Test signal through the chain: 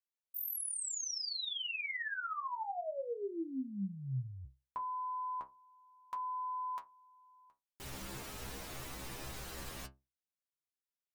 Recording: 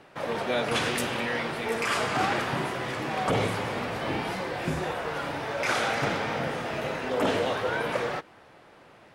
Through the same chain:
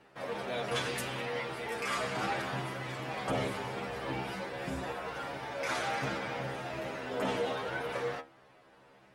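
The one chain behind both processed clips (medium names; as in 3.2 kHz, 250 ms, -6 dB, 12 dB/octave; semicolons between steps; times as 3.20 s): inharmonic resonator 65 Hz, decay 0.27 s, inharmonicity 0.002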